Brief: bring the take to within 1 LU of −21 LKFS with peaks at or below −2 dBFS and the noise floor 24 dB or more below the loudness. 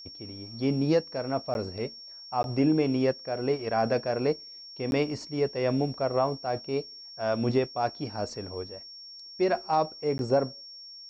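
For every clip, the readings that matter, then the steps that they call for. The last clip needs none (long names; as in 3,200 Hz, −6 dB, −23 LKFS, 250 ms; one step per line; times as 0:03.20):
number of dropouts 4; longest dropout 11 ms; interfering tone 5,500 Hz; level of the tone −43 dBFS; integrated loudness −29.0 LKFS; sample peak −14.5 dBFS; target loudness −21.0 LKFS
→ repair the gap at 0:01.54/0:02.43/0:04.91/0:10.18, 11 ms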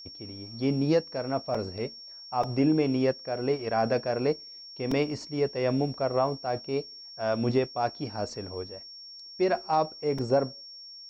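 number of dropouts 0; interfering tone 5,500 Hz; level of the tone −43 dBFS
→ notch filter 5,500 Hz, Q 30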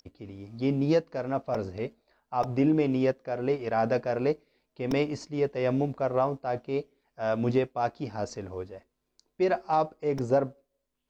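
interfering tone none found; integrated loudness −29.0 LKFS; sample peak −14.5 dBFS; target loudness −21.0 LKFS
→ level +8 dB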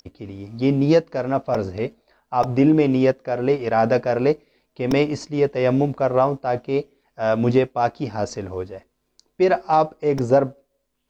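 integrated loudness −21.0 LKFS; sample peak −6.5 dBFS; background noise floor −72 dBFS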